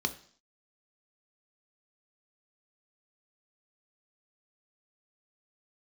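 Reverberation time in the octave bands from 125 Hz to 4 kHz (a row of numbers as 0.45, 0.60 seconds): 0.50, 0.55, 0.50, 0.50, 0.50, 0.65 seconds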